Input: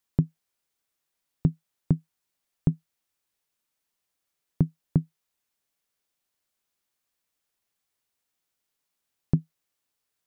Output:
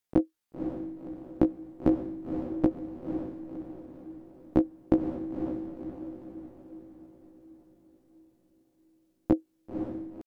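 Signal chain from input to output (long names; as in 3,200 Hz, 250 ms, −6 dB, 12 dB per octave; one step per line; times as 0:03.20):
pitch shifter +12 semitones
feedback delay with all-pass diffusion 524 ms, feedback 50%, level −6 dB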